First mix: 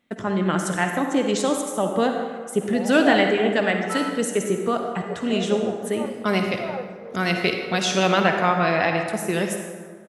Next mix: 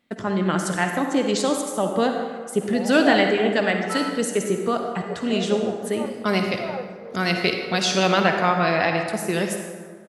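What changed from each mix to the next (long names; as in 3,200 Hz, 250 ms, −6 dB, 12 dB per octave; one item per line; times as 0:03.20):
master: add parametric band 4,600 Hz +8 dB 0.26 octaves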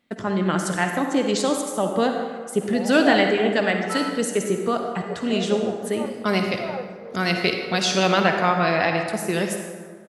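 nothing changed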